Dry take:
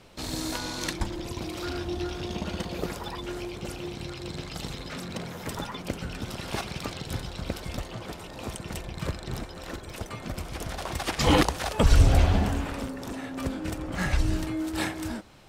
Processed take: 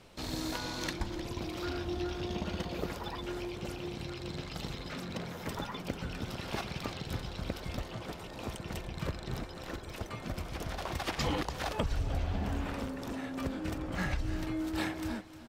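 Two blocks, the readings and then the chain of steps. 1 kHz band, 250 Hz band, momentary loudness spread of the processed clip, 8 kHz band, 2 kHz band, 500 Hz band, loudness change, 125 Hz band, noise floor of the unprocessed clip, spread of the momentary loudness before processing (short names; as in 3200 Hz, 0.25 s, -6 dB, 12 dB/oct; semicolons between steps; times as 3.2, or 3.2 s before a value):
-6.5 dB, -5.5 dB, 6 LU, -9.5 dB, -6.0 dB, -6.0 dB, -7.0 dB, -8.5 dB, -42 dBFS, 14 LU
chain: dynamic EQ 9200 Hz, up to -7 dB, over -55 dBFS, Q 0.99; compressor 10:1, threshold -25 dBFS, peak gain reduction 13.5 dB; echo 0.306 s -14.5 dB; gain -3.5 dB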